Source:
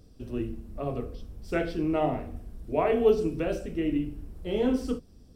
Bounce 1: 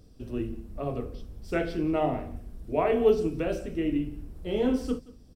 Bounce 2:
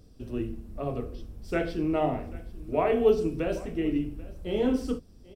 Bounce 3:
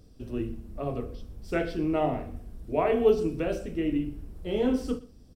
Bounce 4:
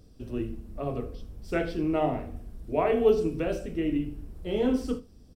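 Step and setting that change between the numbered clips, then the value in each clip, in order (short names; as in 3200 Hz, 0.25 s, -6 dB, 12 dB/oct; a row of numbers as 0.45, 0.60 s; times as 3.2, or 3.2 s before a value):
echo, time: 177, 788, 120, 81 ms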